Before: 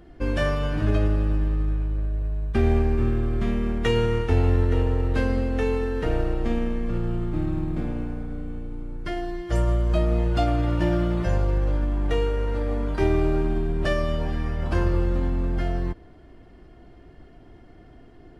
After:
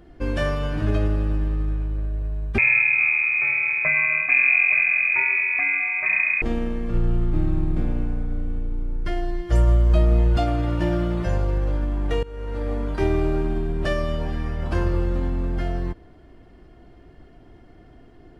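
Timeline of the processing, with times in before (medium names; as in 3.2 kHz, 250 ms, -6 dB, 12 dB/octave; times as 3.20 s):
2.58–6.42 s: frequency inversion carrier 2.5 kHz
6.94–10.37 s: bass shelf 71 Hz +10 dB
12.23–12.67 s: fade in, from -20.5 dB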